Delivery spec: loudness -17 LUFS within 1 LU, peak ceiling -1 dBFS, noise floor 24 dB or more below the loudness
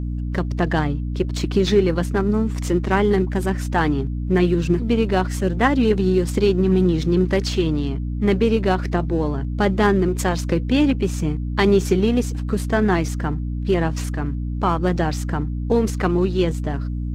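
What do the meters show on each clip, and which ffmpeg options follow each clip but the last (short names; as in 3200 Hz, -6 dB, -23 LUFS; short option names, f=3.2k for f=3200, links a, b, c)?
hum 60 Hz; harmonics up to 300 Hz; hum level -22 dBFS; loudness -20.5 LUFS; peak -4.0 dBFS; loudness target -17.0 LUFS
-> -af "bandreject=f=60:t=h:w=4,bandreject=f=120:t=h:w=4,bandreject=f=180:t=h:w=4,bandreject=f=240:t=h:w=4,bandreject=f=300:t=h:w=4"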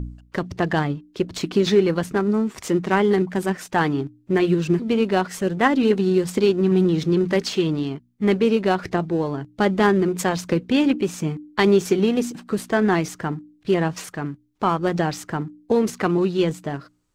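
hum none; loudness -21.5 LUFS; peak -4.5 dBFS; loudness target -17.0 LUFS
-> -af "volume=4.5dB,alimiter=limit=-1dB:level=0:latency=1"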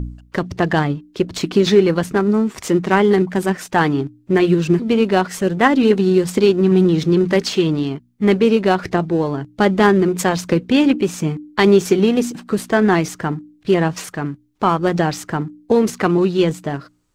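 loudness -17.0 LUFS; peak -1.0 dBFS; noise floor -54 dBFS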